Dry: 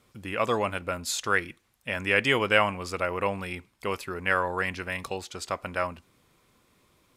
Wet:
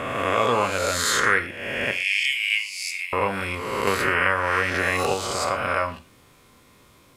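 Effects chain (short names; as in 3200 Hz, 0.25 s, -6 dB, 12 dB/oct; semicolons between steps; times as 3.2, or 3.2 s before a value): spectral swells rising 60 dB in 1.40 s; 1.91–3.13 elliptic high-pass 2200 Hz, stop band 40 dB; in parallel at +2.5 dB: compressor, threshold -34 dBFS, peak gain reduction 17 dB; on the sum: non-linear reverb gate 0.15 s falling, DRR 7 dB; 3.87–5.14 three-band squash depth 100%; gain -1 dB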